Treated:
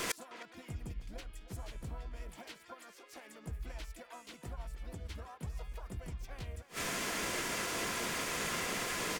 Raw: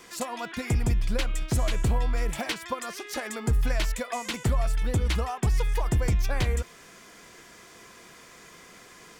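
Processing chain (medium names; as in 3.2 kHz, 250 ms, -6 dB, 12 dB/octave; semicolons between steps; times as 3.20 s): harmony voices -5 st -16 dB, +5 st -4 dB, +7 st -15 dB; inverted gate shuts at -30 dBFS, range -32 dB; speakerphone echo 310 ms, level -12 dB; trim +11.5 dB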